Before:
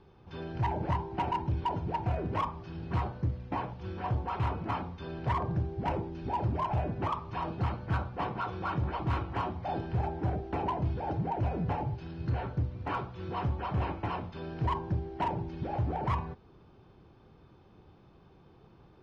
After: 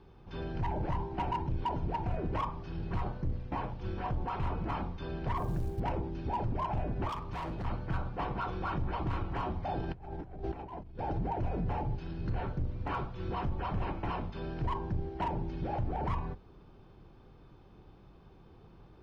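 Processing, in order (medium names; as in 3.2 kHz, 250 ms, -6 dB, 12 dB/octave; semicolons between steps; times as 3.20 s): octave divider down 2 oct, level 0 dB; 5.37–5.80 s: short-mantissa float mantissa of 4-bit; peak limiter -26 dBFS, peak gain reduction 6.5 dB; 7.09–7.65 s: hard clipper -34 dBFS, distortion -24 dB; 9.80–10.99 s: compressor with a negative ratio -39 dBFS, ratio -0.5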